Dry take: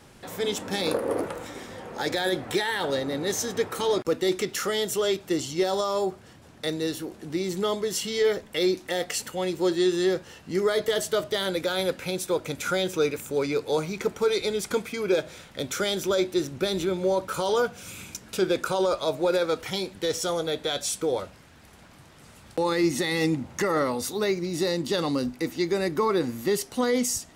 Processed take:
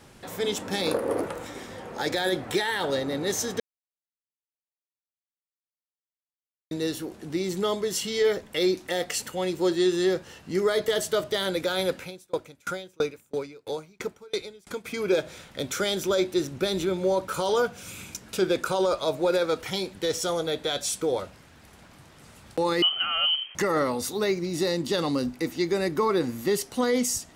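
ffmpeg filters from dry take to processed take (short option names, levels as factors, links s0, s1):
-filter_complex "[0:a]asplit=3[s0][s1][s2];[s0]afade=t=out:st=11.99:d=0.02[s3];[s1]aeval=exprs='val(0)*pow(10,-32*if(lt(mod(3*n/s,1),2*abs(3)/1000),1-mod(3*n/s,1)/(2*abs(3)/1000),(mod(3*n/s,1)-2*abs(3)/1000)/(1-2*abs(3)/1000))/20)':c=same,afade=t=in:st=11.99:d=0.02,afade=t=out:st=14.84:d=0.02[s4];[s2]afade=t=in:st=14.84:d=0.02[s5];[s3][s4][s5]amix=inputs=3:normalize=0,asettb=1/sr,asplit=3[s6][s7][s8];[s6]atrim=end=22.824[s9];[s7]atrim=start=22.82:end=23.55,asetpts=PTS-STARTPTS,afade=t=in:d=0.004:c=qsin,afade=t=out:st=0.726:d=0.004:c=qsin,lowpass=f=2800:t=q:w=0.5098,lowpass=f=2800:t=q:w=0.6013,lowpass=f=2800:t=q:w=0.9,lowpass=f=2800:t=q:w=2.563,afreqshift=-3300[s10];[s8]atrim=start=23.546[s11];[s9][s10]acrossfade=d=0.004:c1=hsin:c2=qsin[s12];[s12][s11]acrossfade=d=0.004:c1=qsin:c2=hsin,asplit=3[s13][s14][s15];[s13]atrim=end=3.6,asetpts=PTS-STARTPTS,afade=t=out:st=3.596:d=0.004:c=hsin[s16];[s14]atrim=start=3.6:end=6.71,asetpts=PTS-STARTPTS,volume=0[s17];[s15]atrim=start=6.71,asetpts=PTS-STARTPTS,afade=t=in:d=0.004:c=hsin[s18];[s16][s17][s18]concat=n=3:v=0:a=1"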